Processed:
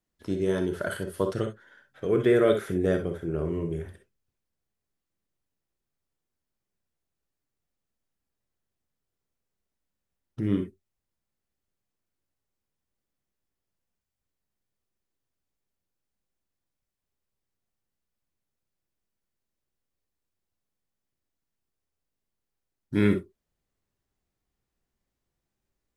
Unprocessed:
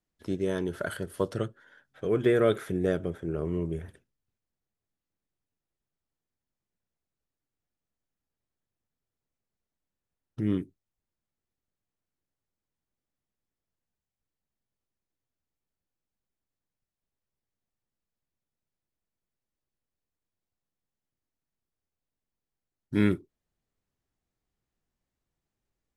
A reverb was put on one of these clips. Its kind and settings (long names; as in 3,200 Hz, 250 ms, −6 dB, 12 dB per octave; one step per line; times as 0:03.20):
reverb whose tail is shaped and stops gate 80 ms rising, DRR 5.5 dB
level +1 dB